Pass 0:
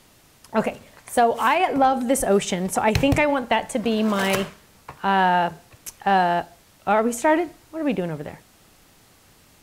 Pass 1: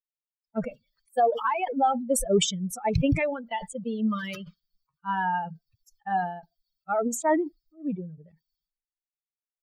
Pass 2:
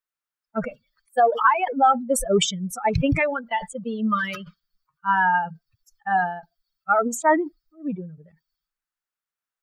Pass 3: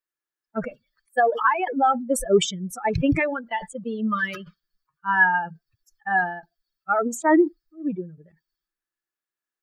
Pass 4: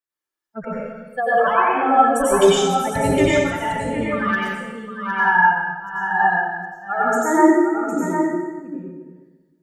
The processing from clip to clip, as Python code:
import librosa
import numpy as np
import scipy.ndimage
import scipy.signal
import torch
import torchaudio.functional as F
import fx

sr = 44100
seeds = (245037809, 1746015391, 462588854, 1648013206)

y1 = fx.bin_expand(x, sr, power=3.0)
y1 = fx.lowpass(y1, sr, hz=1400.0, slope=6)
y1 = fx.sustainer(y1, sr, db_per_s=82.0)
y2 = fx.peak_eq(y1, sr, hz=1400.0, db=11.5, octaves=1.1)
y2 = y2 * 10.0 ** (1.5 / 20.0)
y3 = fx.small_body(y2, sr, hz=(340.0, 1700.0), ring_ms=40, db=12)
y3 = y3 * 10.0 ** (-3.0 / 20.0)
y4 = y3 + 10.0 ** (-7.5 / 20.0) * np.pad(y3, (int(759 * sr / 1000.0), 0))[:len(y3)]
y4 = fx.rev_plate(y4, sr, seeds[0], rt60_s=1.3, hf_ratio=0.8, predelay_ms=80, drr_db=-8.0)
y4 = y4 * 10.0 ** (-4.5 / 20.0)